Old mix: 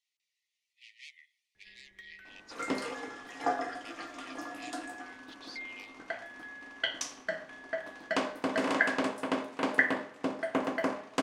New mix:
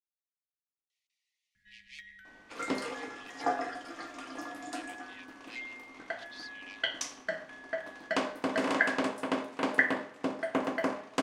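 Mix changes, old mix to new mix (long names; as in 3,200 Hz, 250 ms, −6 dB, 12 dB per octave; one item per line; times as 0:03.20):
speech: entry +0.90 s
first sound: add linear-phase brick-wall band-stop 270–1,300 Hz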